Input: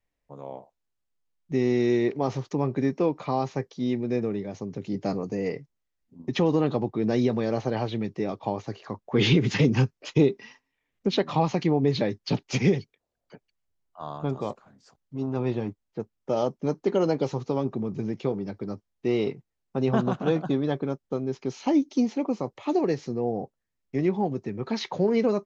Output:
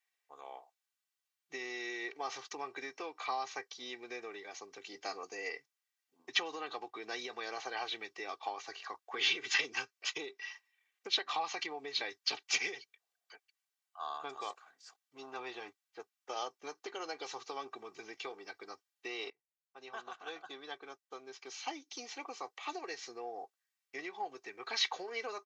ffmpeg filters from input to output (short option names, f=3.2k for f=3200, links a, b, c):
-filter_complex "[0:a]asplit=2[a][b];[a]atrim=end=19.3,asetpts=PTS-STARTPTS,afade=t=out:st=19.296:d=0.004:c=hsin:silence=0.0944061[c];[b]atrim=start=19.3,asetpts=PTS-STARTPTS,afade=t=in:d=3.59:silence=0.0944061[d];[c][d]concat=n=2:v=0:a=1,aecho=1:1:2.6:0.59,acompressor=threshold=-24dB:ratio=5,highpass=1.3k,volume=2dB"